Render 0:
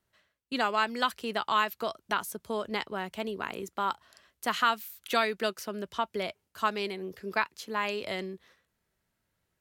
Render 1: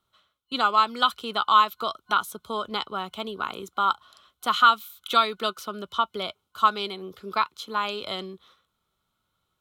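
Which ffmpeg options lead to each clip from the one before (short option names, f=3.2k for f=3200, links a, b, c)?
-af "superequalizer=9b=1.58:10b=3.16:11b=0.447:13b=2.82"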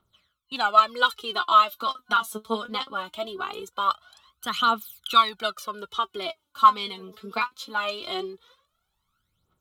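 -af "aphaser=in_gain=1:out_gain=1:delay=4.7:decay=0.75:speed=0.21:type=triangular,volume=-3dB"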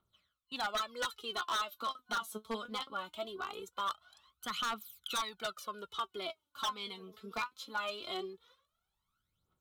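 -af "acompressor=threshold=-25dB:ratio=1.5,aeval=exprs='0.106*(abs(mod(val(0)/0.106+3,4)-2)-1)':c=same,volume=-8.5dB"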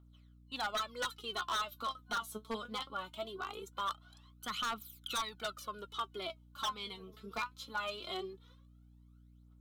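-af "aeval=exprs='val(0)+0.00126*(sin(2*PI*60*n/s)+sin(2*PI*2*60*n/s)/2+sin(2*PI*3*60*n/s)/3+sin(2*PI*4*60*n/s)/4+sin(2*PI*5*60*n/s)/5)':c=same,volume=-1dB"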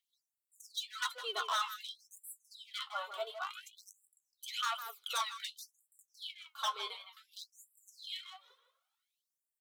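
-filter_complex "[0:a]asplit=2[a][b];[b]adelay=160,highpass=300,lowpass=3.4k,asoftclip=type=hard:threshold=-37dB,volume=-7dB[c];[a][c]amix=inputs=2:normalize=0,flanger=delay=6.6:depth=7.8:regen=-51:speed=0.83:shape=sinusoidal,afftfilt=real='re*gte(b*sr/1024,370*pow(7400/370,0.5+0.5*sin(2*PI*0.55*pts/sr)))':imag='im*gte(b*sr/1024,370*pow(7400/370,0.5+0.5*sin(2*PI*0.55*pts/sr)))':win_size=1024:overlap=0.75,volume=5.5dB"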